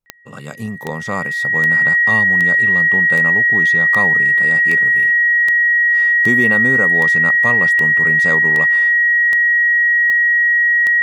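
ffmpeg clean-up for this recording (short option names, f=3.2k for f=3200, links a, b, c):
-af "adeclick=t=4,bandreject=f=1.9k:w=30"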